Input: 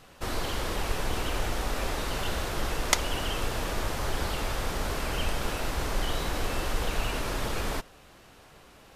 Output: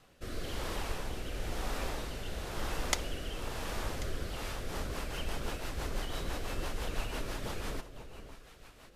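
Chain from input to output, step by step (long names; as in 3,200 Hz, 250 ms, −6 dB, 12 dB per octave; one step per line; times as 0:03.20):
delay that swaps between a low-pass and a high-pass 544 ms, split 1,100 Hz, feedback 54%, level −10.5 dB
rotating-speaker cabinet horn 1 Hz, later 6 Hz, at 0:04.15
level −5.5 dB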